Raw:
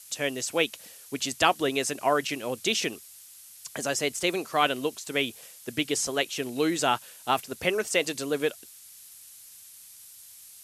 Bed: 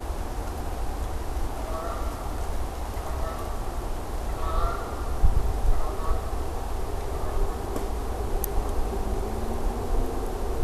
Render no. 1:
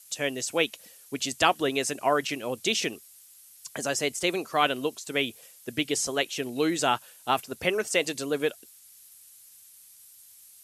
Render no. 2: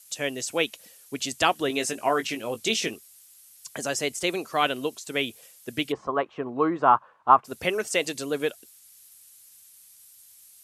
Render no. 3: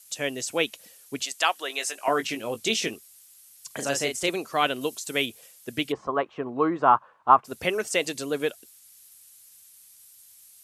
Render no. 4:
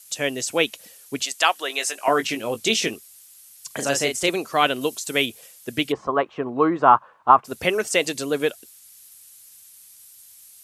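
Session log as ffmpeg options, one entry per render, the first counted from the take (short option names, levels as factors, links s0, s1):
-af "afftdn=nr=6:nf=-49"
-filter_complex "[0:a]asettb=1/sr,asplit=3[s0][s1][s2];[s0]atrim=end=1.684[s3];[s1]atrim=start=1.68:end=2.94,asetpts=PTS-STARTPTS,afade=t=in:d=0.004:c=qsin,afade=t=out:st=1.256:d=0.004:c=qsin,asplit=2[s4][s5];[s5]adelay=18,volume=0.398[s6];[s4][s6]amix=inputs=2:normalize=0,atrim=end_sample=55566[s7];[s2]atrim=start=2.936[s8];[s3][s7]acrossfade=d=0.004:c1=hsin:c2=qsin[s9];[s9][s8]acrossfade=d=0.004:c1=qsin:c2=hsin,asplit=3[s10][s11][s12];[s10]afade=t=out:st=5.91:d=0.02[s13];[s11]lowpass=f=1100:t=q:w=6.5,afade=t=in:st=5.91:d=0.02,afade=t=out:st=7.44:d=0.02[s14];[s12]afade=t=in:st=7.44:d=0.02[s15];[s13][s14][s15]amix=inputs=3:normalize=0"
-filter_complex "[0:a]asettb=1/sr,asplit=3[s0][s1][s2];[s0]atrim=end=1.234[s3];[s1]atrim=start=1.23:end=2.08,asetpts=PTS-STARTPTS,afade=t=in:d=0.004:c=qsin,afade=t=out:st=0.846:d=0.004:c=qsin,highpass=750[s4];[s2]atrim=start=2.076[s5];[s3][s4]acrossfade=d=0.004:c1=hsin:c2=qsin[s6];[s6][s5]acrossfade=d=0.004:c1=qsin:c2=hsin,asettb=1/sr,asplit=3[s7][s8][s9];[s7]atrim=end=3.674[s10];[s8]atrim=start=3.67:end=4.29,asetpts=PTS-STARTPTS,afade=t=in:d=0.004:c=qsin,afade=t=out:st=0.616:d=0.004:c=qsin,asplit=2[s11][s12];[s12]adelay=36,volume=0.531[s13];[s11][s13]amix=inputs=2:normalize=0,atrim=end_sample=27342[s14];[s9]atrim=start=4.286[s15];[s10][s14]acrossfade=d=0.004:c1=hsin:c2=qsin[s16];[s16][s15]acrossfade=d=0.004:c1=qsin:c2=hsin,asettb=1/sr,asplit=3[s17][s18][s19];[s17]atrim=end=4.814[s20];[s18]atrim=start=4.81:end=5.26,asetpts=PTS-STARTPTS,afade=t=in:d=0.004:c=qsin,afade=t=out:st=0.446:d=0.004:c=qsin,highshelf=f=5000:g=7.5[s21];[s19]atrim=start=5.256[s22];[s20][s21]acrossfade=d=0.004:c1=hsin:c2=qsin[s23];[s23][s22]acrossfade=d=0.004:c1=qsin:c2=hsin"
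-af "volume=1.68,alimiter=limit=0.891:level=0:latency=1"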